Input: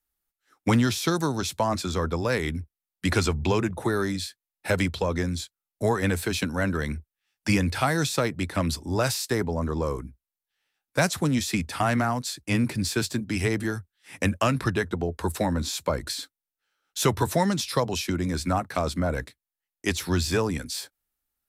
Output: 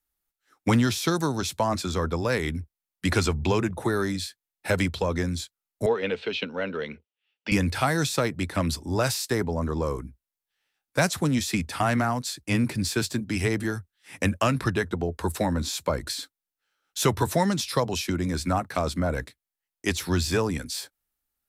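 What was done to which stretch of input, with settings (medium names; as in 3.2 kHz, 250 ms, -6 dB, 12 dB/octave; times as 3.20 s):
5.86–7.52 s: cabinet simulation 290–3800 Hz, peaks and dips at 320 Hz -8 dB, 460 Hz +6 dB, 740 Hz -5 dB, 1.1 kHz -6 dB, 1.7 kHz -7 dB, 2.9 kHz +7 dB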